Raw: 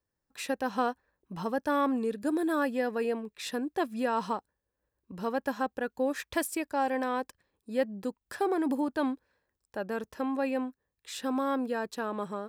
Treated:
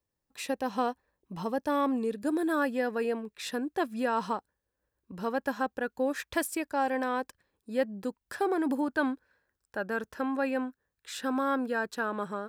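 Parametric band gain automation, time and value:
parametric band 1,500 Hz 0.38 octaves
0:01.99 −5.5 dB
0:02.46 +3 dB
0:08.54 +3 dB
0:09.01 +9 dB

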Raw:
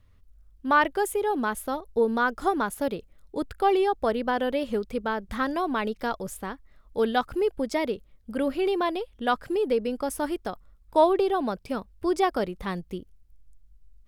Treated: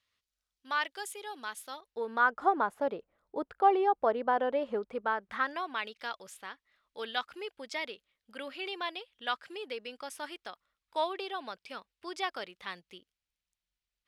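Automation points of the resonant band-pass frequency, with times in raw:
resonant band-pass, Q 0.99
0:01.68 4,300 Hz
0:02.45 850 Hz
0:04.84 850 Hz
0:05.84 3,000 Hz

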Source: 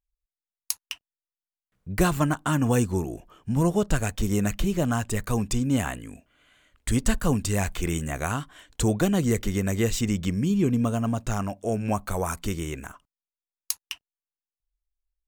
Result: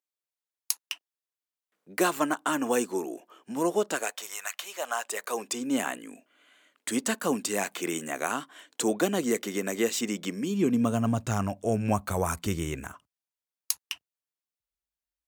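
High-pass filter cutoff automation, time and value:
high-pass filter 24 dB per octave
0:03.92 290 Hz
0:04.39 950 Hz
0:05.81 250 Hz
0:10.51 250 Hz
0:11.23 69 Hz

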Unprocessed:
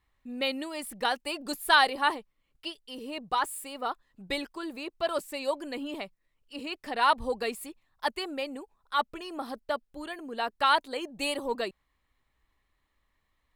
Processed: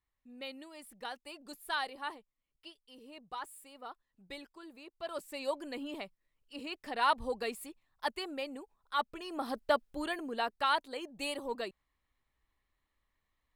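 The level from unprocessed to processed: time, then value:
0:04.91 −14 dB
0:05.41 −5 dB
0:09.13 −5 dB
0:09.64 +2.5 dB
0:10.14 +2.5 dB
0:10.66 −6.5 dB

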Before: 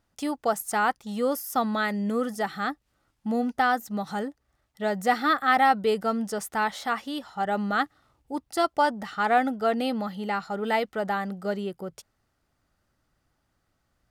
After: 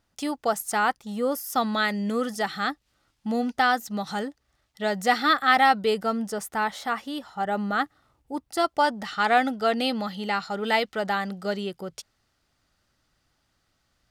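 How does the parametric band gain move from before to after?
parametric band 4,200 Hz 2.1 octaves
0:00.89 +4 dB
0:01.20 −4 dB
0:01.63 +7.5 dB
0:05.68 +7.5 dB
0:06.34 −0.5 dB
0:08.44 −0.5 dB
0:09.17 +9 dB

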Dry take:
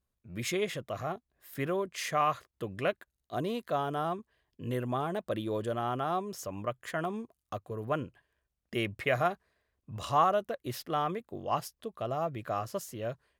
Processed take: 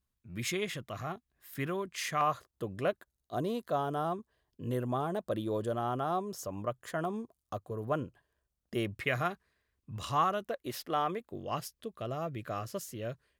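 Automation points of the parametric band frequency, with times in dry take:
parametric band −7.5 dB 1 octave
550 Hz
from 0:02.21 2,300 Hz
from 0:08.92 640 Hz
from 0:10.45 120 Hz
from 0:11.32 840 Hz

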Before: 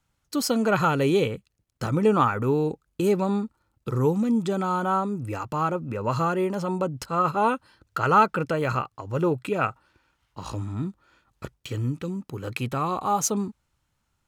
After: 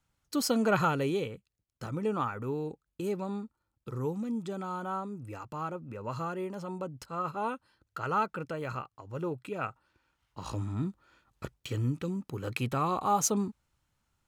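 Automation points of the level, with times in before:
0:00.78 −4 dB
0:01.25 −11 dB
0:09.49 −11 dB
0:10.61 −3 dB

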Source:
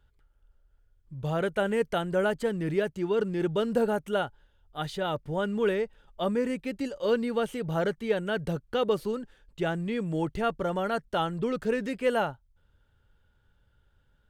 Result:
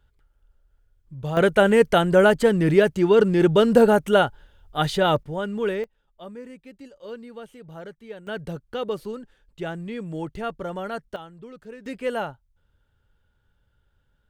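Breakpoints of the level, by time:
+2 dB
from 0:01.37 +10.5 dB
from 0:05.23 +1 dB
from 0:05.84 −11.5 dB
from 0:08.27 −2 dB
from 0:11.16 −13 dB
from 0:11.86 −1 dB

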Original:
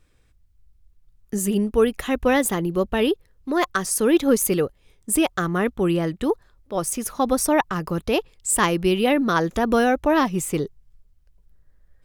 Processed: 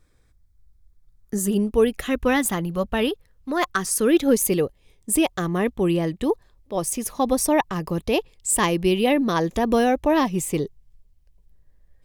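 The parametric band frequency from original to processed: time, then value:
parametric band −12 dB 0.29 octaves
0:01.37 2,800 Hz
0:02.65 360 Hz
0:03.50 360 Hz
0:04.40 1,400 Hz

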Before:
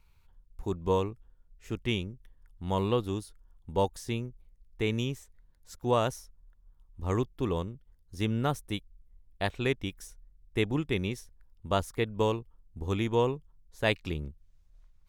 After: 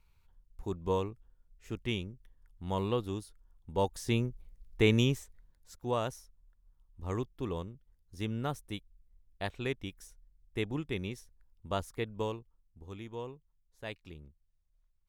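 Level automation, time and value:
0:03.75 −4 dB
0:04.21 +4.5 dB
0:05.13 +4.5 dB
0:05.79 −6 dB
0:12.10 −6 dB
0:12.89 −15 dB

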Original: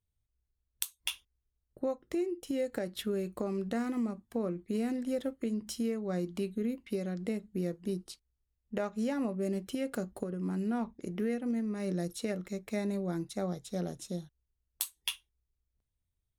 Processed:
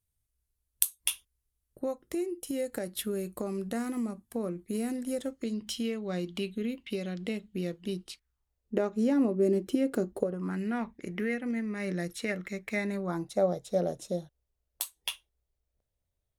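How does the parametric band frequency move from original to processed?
parametric band +12.5 dB 0.95 octaves
0:05.09 11,000 Hz
0:05.64 3,100 Hz
0:08.05 3,100 Hz
0:08.75 340 Hz
0:10.13 340 Hz
0:10.56 2,000 Hz
0:12.88 2,000 Hz
0:13.34 580 Hz

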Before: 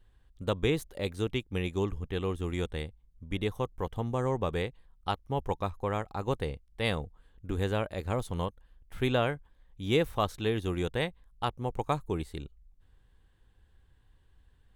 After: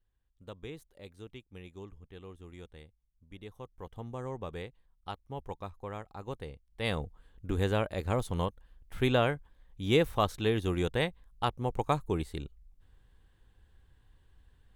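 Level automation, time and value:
0:03.40 −16 dB
0:04.03 −9 dB
0:06.54 −9 dB
0:07.05 +1 dB

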